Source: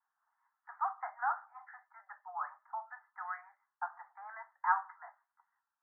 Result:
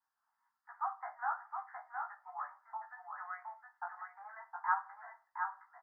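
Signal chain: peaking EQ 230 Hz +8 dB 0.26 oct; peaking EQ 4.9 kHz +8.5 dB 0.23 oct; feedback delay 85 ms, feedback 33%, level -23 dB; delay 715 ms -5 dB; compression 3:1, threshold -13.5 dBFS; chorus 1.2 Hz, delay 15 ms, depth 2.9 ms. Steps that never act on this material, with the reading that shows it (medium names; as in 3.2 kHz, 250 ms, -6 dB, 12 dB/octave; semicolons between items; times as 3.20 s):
peaking EQ 230 Hz: input has nothing below 570 Hz; peaking EQ 4.9 kHz: input has nothing above 2 kHz; compression, threshold -13.5 dBFS: peak at its input -17.0 dBFS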